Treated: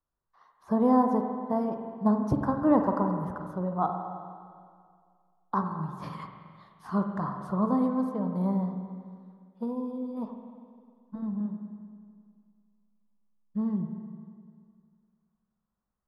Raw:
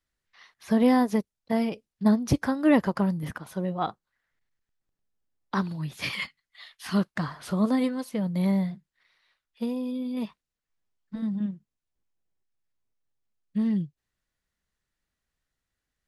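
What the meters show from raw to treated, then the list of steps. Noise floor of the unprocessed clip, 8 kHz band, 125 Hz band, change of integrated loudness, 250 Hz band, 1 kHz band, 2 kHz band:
below −85 dBFS, below −15 dB, −2.5 dB, −2.0 dB, −2.5 dB, +3.0 dB, −12.5 dB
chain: high shelf with overshoot 1,600 Hz −14 dB, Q 3
spring reverb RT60 2.1 s, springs 43/50 ms, chirp 50 ms, DRR 4.5 dB
level −4 dB

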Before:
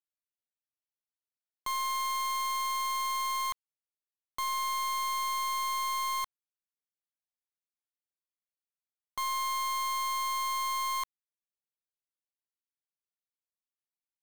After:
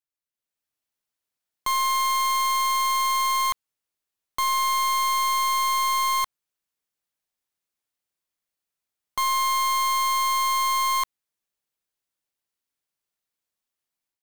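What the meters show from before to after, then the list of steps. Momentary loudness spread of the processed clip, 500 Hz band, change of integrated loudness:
5 LU, can't be measured, +9.0 dB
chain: automatic gain control gain up to 9 dB

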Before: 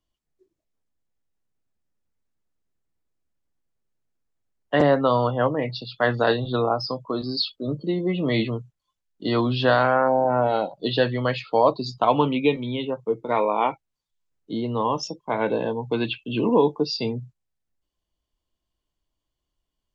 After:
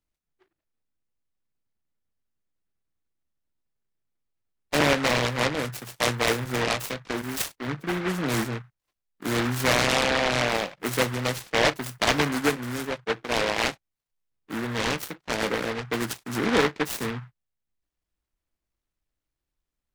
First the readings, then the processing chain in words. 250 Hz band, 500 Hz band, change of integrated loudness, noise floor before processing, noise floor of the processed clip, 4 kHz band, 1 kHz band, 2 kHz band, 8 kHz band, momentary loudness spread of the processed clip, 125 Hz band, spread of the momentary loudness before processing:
−4.0 dB, −5.5 dB, −2.5 dB, −82 dBFS, below −85 dBFS, +2.5 dB, −5.0 dB, +4.0 dB, can't be measured, 9 LU, −3.0 dB, 9 LU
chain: short delay modulated by noise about 1,300 Hz, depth 0.26 ms
level −3.5 dB

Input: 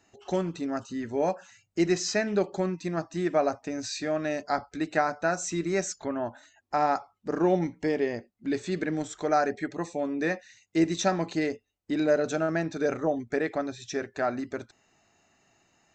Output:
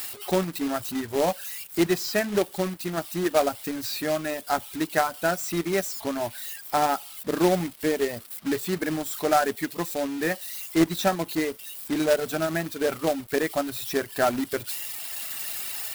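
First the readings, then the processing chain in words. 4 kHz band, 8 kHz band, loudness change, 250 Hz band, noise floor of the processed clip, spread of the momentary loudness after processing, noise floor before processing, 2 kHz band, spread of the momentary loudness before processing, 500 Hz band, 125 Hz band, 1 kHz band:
+6.5 dB, +4.5 dB, +2.5 dB, +1.5 dB, −44 dBFS, 7 LU, −72 dBFS, +3.0 dB, 8 LU, +2.0 dB, +1.0 dB, +2.5 dB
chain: spike at every zero crossing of −28.5 dBFS
speech leveller 2 s
parametric band 6,400 Hz −13.5 dB 0.33 octaves
reverb reduction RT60 1.1 s
log-companded quantiser 4 bits
level +2.5 dB

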